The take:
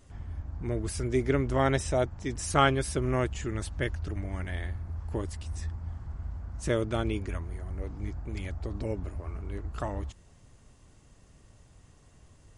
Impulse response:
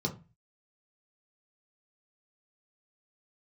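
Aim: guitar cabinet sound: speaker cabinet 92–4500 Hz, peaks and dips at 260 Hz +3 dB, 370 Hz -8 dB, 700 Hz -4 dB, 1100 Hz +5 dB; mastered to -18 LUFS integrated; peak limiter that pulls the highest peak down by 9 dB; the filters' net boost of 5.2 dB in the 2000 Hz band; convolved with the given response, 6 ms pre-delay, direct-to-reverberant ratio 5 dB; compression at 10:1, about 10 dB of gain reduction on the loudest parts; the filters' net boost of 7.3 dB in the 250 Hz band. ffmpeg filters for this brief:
-filter_complex "[0:a]equalizer=f=250:t=o:g=8,equalizer=f=2k:t=o:g=6,acompressor=threshold=-26dB:ratio=10,alimiter=level_in=0.5dB:limit=-24dB:level=0:latency=1,volume=-0.5dB,asplit=2[a][b];[1:a]atrim=start_sample=2205,adelay=6[c];[b][c]afir=irnorm=-1:irlink=0,volume=-9.5dB[d];[a][d]amix=inputs=2:normalize=0,highpass=92,equalizer=f=260:t=q:w=4:g=3,equalizer=f=370:t=q:w=4:g=-8,equalizer=f=700:t=q:w=4:g=-4,equalizer=f=1.1k:t=q:w=4:g=5,lowpass=f=4.5k:w=0.5412,lowpass=f=4.5k:w=1.3066,volume=14.5dB"

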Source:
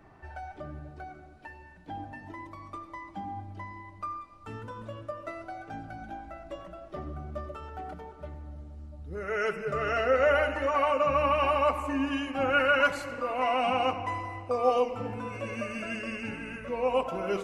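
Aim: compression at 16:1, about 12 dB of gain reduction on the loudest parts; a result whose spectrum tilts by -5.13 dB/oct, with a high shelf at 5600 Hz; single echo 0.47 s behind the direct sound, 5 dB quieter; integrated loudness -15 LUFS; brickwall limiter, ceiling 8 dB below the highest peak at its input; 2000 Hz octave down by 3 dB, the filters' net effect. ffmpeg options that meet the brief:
-af "equalizer=f=2k:t=o:g=-4,highshelf=f=5.6k:g=-5.5,acompressor=threshold=-32dB:ratio=16,alimiter=level_in=7.5dB:limit=-24dB:level=0:latency=1,volume=-7.5dB,aecho=1:1:470:0.562,volume=25dB"

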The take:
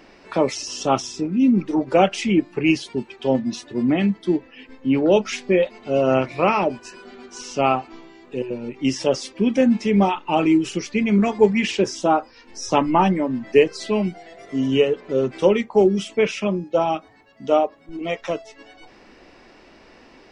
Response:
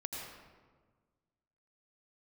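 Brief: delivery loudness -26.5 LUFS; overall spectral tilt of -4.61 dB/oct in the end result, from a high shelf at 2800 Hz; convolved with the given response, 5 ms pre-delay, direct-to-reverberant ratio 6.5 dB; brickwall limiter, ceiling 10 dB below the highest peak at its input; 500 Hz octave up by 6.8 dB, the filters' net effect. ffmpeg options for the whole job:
-filter_complex "[0:a]equalizer=f=500:t=o:g=8,highshelf=f=2.8k:g=8,alimiter=limit=-6.5dB:level=0:latency=1,asplit=2[a][b];[1:a]atrim=start_sample=2205,adelay=5[c];[b][c]afir=irnorm=-1:irlink=0,volume=-7dB[d];[a][d]amix=inputs=2:normalize=0,volume=-9dB"

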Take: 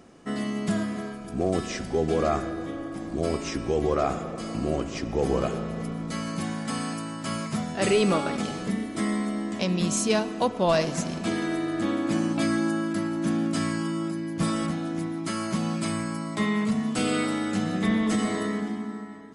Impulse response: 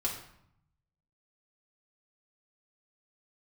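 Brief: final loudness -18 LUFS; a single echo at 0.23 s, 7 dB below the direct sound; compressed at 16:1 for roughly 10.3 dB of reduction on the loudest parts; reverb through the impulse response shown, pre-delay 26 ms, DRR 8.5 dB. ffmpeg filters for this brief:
-filter_complex "[0:a]acompressor=threshold=-29dB:ratio=16,aecho=1:1:230:0.447,asplit=2[a][b];[1:a]atrim=start_sample=2205,adelay=26[c];[b][c]afir=irnorm=-1:irlink=0,volume=-13dB[d];[a][d]amix=inputs=2:normalize=0,volume=14.5dB"

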